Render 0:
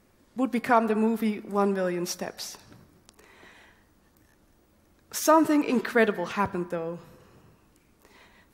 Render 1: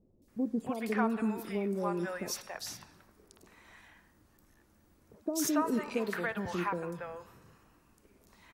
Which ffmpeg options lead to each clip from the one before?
-filter_complex "[0:a]acompressor=threshold=0.0708:ratio=5,acrossover=split=590|3500[s0][s1][s2];[s2]adelay=220[s3];[s1]adelay=280[s4];[s0][s4][s3]amix=inputs=3:normalize=0,volume=0.708"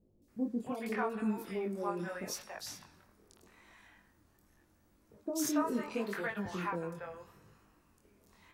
-af "flanger=delay=19:depth=5.8:speed=0.79"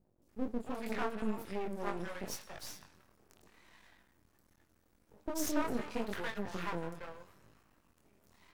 -af "aeval=exprs='max(val(0),0)':c=same,volume=1.26"

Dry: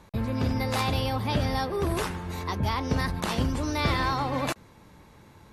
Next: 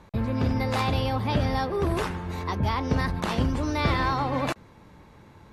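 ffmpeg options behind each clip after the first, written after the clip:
-af "aemphasis=mode=reproduction:type=cd,volume=1.19"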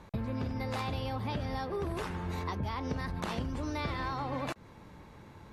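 -af "acompressor=threshold=0.0282:ratio=6,volume=0.891"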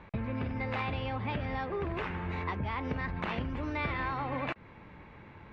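-af "lowpass=f=2400:t=q:w=2.1"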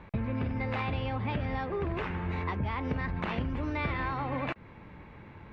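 -af "lowshelf=f=400:g=3.5"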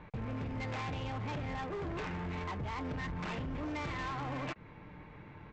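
-af "aecho=1:1:6.6:0.3,aresample=16000,asoftclip=type=hard:threshold=0.0224,aresample=44100,volume=0.75"

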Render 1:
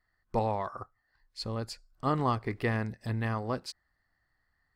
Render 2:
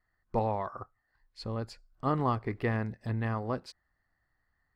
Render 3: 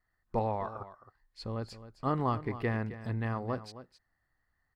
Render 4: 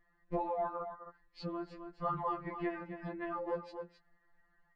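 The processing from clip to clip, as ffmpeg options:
-af "highshelf=f=3700:g=-11.5"
-af "aecho=1:1:264:0.2,volume=0.841"
-af "lowpass=2200,acompressor=threshold=0.00447:ratio=2,afftfilt=real='re*2.83*eq(mod(b,8),0)':imag='im*2.83*eq(mod(b,8),0)':win_size=2048:overlap=0.75,volume=3.35"

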